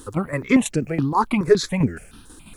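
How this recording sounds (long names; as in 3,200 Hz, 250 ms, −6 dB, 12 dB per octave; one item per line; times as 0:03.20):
tremolo saw down 6.1 Hz, depth 60%
a quantiser's noise floor 12 bits, dither none
notches that jump at a steady rate 7.1 Hz 630–3,600 Hz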